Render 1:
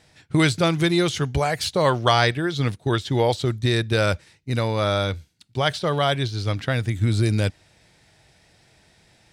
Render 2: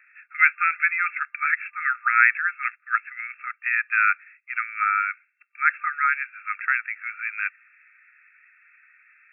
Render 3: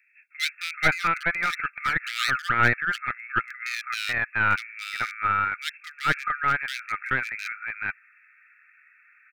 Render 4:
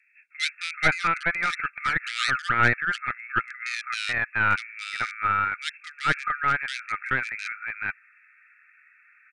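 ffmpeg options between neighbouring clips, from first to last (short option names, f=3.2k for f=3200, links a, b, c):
-af "afftfilt=real='re*between(b*sr/4096,1200,2700)':imag='im*between(b*sr/4096,1200,2700)':win_size=4096:overlap=0.75,volume=8dB"
-filter_complex "[0:a]aeval=exprs='clip(val(0),-1,0.0841)':c=same,acrossover=split=2400[a][b];[a]adelay=430[c];[c][b]amix=inputs=2:normalize=0,volume=1dB"
-af "aresample=22050,aresample=44100"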